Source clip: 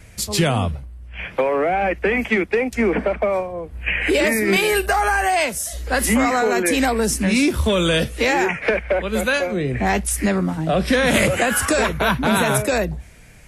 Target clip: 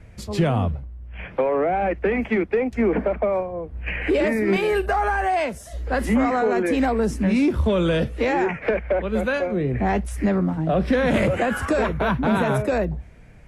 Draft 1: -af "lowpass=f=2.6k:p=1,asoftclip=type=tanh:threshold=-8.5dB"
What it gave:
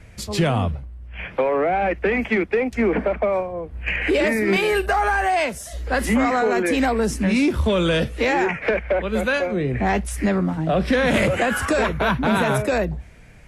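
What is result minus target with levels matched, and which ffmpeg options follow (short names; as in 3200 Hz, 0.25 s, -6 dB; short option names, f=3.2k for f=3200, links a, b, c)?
2000 Hz band +3.0 dB
-af "lowpass=f=1k:p=1,asoftclip=type=tanh:threshold=-8.5dB"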